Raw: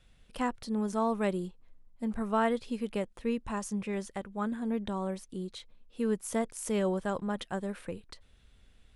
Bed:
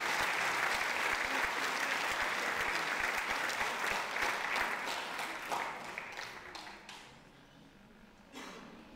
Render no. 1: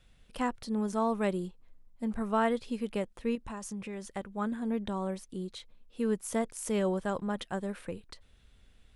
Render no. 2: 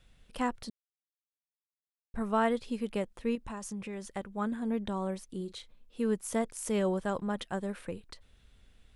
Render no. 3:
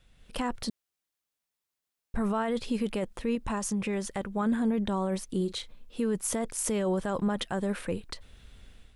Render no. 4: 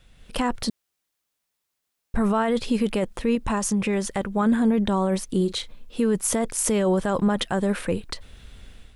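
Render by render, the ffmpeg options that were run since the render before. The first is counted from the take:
ffmpeg -i in.wav -filter_complex "[0:a]asettb=1/sr,asplit=3[link_01][link_02][link_03];[link_01]atrim=end=3.354[link_04];[link_02]atrim=start=3.35:end=4.13,asetpts=PTS-STARTPTS,afade=type=in:duration=0.004:curve=qsin,afade=type=out:start_time=0.776:duration=0.004:curve=qsin,acompressor=threshold=-37dB:ratio=3:attack=3.2:release=140:knee=1:detection=peak[link_05];[link_03]atrim=start=4.126[link_06];[link_04][link_05]acrossfade=duration=0.004:curve1=hsin:curve2=qsin[link_07];[link_07][link_06]acrossfade=duration=0.004:curve1=qsin:curve2=hsin" out.wav
ffmpeg -i in.wav -filter_complex "[0:a]asettb=1/sr,asplit=3[link_01][link_02][link_03];[link_01]atrim=end=5.374[link_04];[link_02]atrim=start=5.37:end=6,asetpts=PTS-STARTPTS,afade=type=in:duration=0.004:curve=qsin,afade=type=out:start_time=0.626:duration=0.004:curve=qsin,asplit=2[link_05][link_06];[link_06]adelay=35,volume=-13.5dB[link_07];[link_05][link_07]amix=inputs=2:normalize=0,atrim=end_sample=27783[link_08];[link_03]atrim=start=5.996[link_09];[link_04][link_08]acrossfade=duration=0.004:curve1=hsin:curve2=qsin[link_10];[link_10][link_09]acrossfade=duration=0.004:curve1=qsin:curve2=hsin,asplit=3[link_11][link_12][link_13];[link_11]atrim=end=0.7,asetpts=PTS-STARTPTS,afade=type=out:start_time=0.696:duration=0.004:curve=hsin[link_14];[link_12]atrim=start=0.7:end=2.14,asetpts=PTS-STARTPTS,volume=0[link_15];[link_13]atrim=start=2.14,asetpts=PTS-STARTPTS,afade=type=in:duration=0.004:curve=hsin[link_16];[link_14][link_15][link_16]concat=n=3:v=0:a=1" out.wav
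ffmpeg -i in.wav -af "dynaudnorm=framelen=110:gausssize=5:maxgain=9dB,alimiter=limit=-20.5dB:level=0:latency=1:release=14" out.wav
ffmpeg -i in.wav -af "volume=7dB" out.wav

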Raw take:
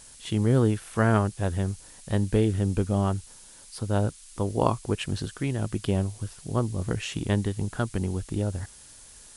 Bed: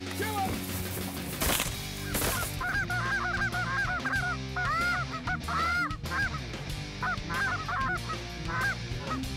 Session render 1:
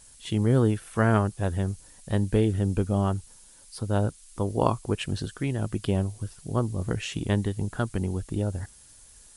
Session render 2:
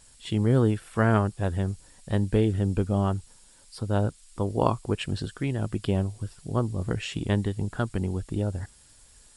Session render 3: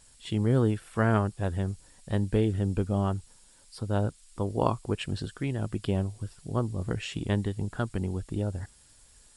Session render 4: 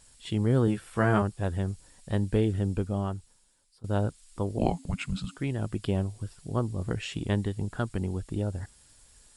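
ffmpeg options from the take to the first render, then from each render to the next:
ffmpeg -i in.wav -af "afftdn=noise_reduction=6:noise_floor=-50" out.wav
ffmpeg -i in.wav -af "equalizer=frequency=9900:width=5.9:gain=-12,bandreject=frequency=6200:width=7.9" out.wav
ffmpeg -i in.wav -af "volume=-2.5dB" out.wav
ffmpeg -i in.wav -filter_complex "[0:a]asettb=1/sr,asplit=3[link_01][link_02][link_03];[link_01]atrim=end=0.664[link_04];[link_02]atrim=start=0.66:end=1.22,asetpts=PTS-STARTPTS,afade=type=in:duration=0.004:curve=qsin,afade=type=out:start_time=0.556:duration=0.004:curve=qsin,asplit=2[link_05][link_06];[link_06]adelay=15,volume=-4.5dB[link_07];[link_05][link_07]amix=inputs=2:normalize=0,atrim=end_sample=24696[link_08];[link_03]atrim=start=1.216[link_09];[link_04][link_08]acrossfade=duration=0.004:curve1=hsin:curve2=qsin[link_10];[link_10][link_09]acrossfade=duration=0.004:curve1=qsin:curve2=hsin,asettb=1/sr,asplit=3[link_11][link_12][link_13];[link_11]atrim=end=4.584[link_14];[link_12]atrim=start=4.58:end=5.37,asetpts=PTS-STARTPTS,afade=type=in:duration=0.004:curve=qsin,afade=type=out:start_time=0.786:duration=0.004:curve=qsin,afreqshift=-290[link_15];[link_13]atrim=start=5.366[link_16];[link_14][link_15]acrossfade=duration=0.004:curve1=hsin:curve2=qsin[link_17];[link_17][link_16]acrossfade=duration=0.004:curve1=qsin:curve2=hsin,asplit=2[link_18][link_19];[link_18]atrim=end=3.84,asetpts=PTS-STARTPTS,afade=type=out:start_time=2.6:duration=1.24:silence=0.0891251[link_20];[link_19]atrim=start=3.84,asetpts=PTS-STARTPTS,afade=type=in:duration=0.004:curve=hsin:silence=0.0891251[link_21];[link_20][link_21]concat=n=2:v=0:a=1" out.wav

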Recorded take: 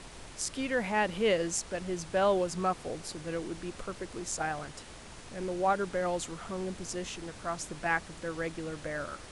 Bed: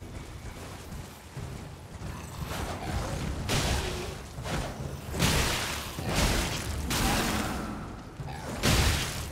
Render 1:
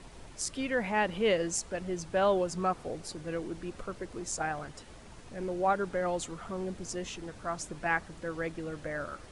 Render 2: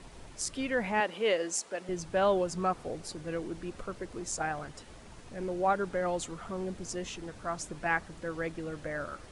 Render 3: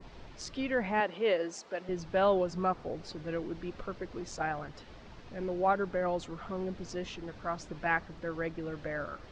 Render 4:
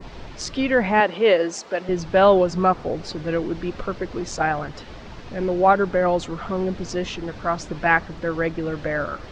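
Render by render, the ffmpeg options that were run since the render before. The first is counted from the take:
ffmpeg -i in.wav -af "afftdn=noise_reduction=7:noise_floor=-48" out.wav
ffmpeg -i in.wav -filter_complex "[0:a]asettb=1/sr,asplit=3[link_01][link_02][link_03];[link_01]atrim=end=1.004[link_04];[link_02]atrim=start=1:end=1.89,asetpts=PTS-STARTPTS,afade=type=in:duration=0.004:curve=qsin,afade=type=out:start_time=0.886:duration=0.004:curve=qsin,highpass=330[link_05];[link_03]atrim=start=1.886[link_06];[link_04][link_05]acrossfade=duration=0.004:curve1=hsin:curve2=qsin[link_07];[link_07][link_06]acrossfade=duration=0.004:curve1=qsin:curve2=hsin" out.wav
ffmpeg -i in.wav -af "lowpass=frequency=5100:width=0.5412,lowpass=frequency=5100:width=1.3066,adynamicequalizer=threshold=0.00355:dfrequency=3300:dqfactor=0.72:tfrequency=3300:tqfactor=0.72:attack=5:release=100:ratio=0.375:range=2.5:mode=cutabove:tftype=bell" out.wav
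ffmpeg -i in.wav -af "volume=12dB" out.wav

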